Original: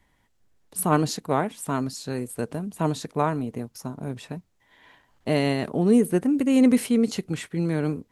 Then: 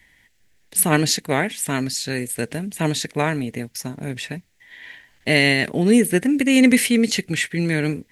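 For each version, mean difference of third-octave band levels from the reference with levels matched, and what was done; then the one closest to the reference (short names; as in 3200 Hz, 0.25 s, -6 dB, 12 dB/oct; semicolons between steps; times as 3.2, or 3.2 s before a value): 4.0 dB: resonant high shelf 1500 Hz +7.5 dB, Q 3; gain +3.5 dB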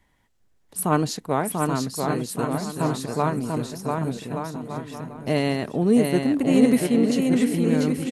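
6.5 dB: bouncing-ball echo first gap 0.69 s, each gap 0.7×, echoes 5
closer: first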